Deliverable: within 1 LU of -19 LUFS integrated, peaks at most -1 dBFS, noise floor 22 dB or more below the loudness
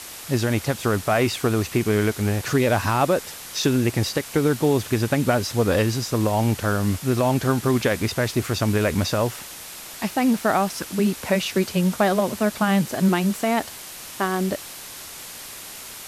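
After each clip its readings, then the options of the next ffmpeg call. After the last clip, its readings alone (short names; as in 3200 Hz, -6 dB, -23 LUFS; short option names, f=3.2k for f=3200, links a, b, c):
noise floor -38 dBFS; noise floor target -44 dBFS; loudness -22.0 LUFS; peak -6.5 dBFS; loudness target -19.0 LUFS
-> -af "afftdn=nr=6:nf=-38"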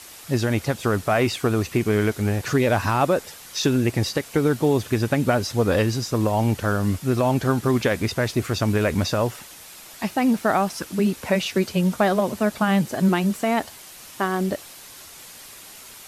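noise floor -43 dBFS; noise floor target -45 dBFS
-> -af "afftdn=nr=6:nf=-43"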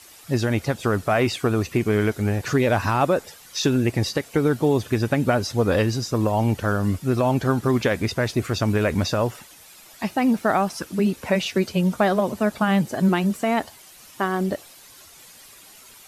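noise floor -48 dBFS; loudness -22.5 LUFS; peak -6.5 dBFS; loudness target -19.0 LUFS
-> -af "volume=3.5dB"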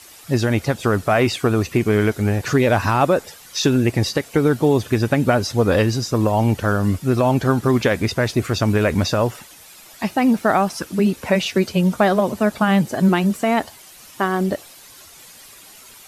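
loudness -19.0 LUFS; peak -3.0 dBFS; noise floor -44 dBFS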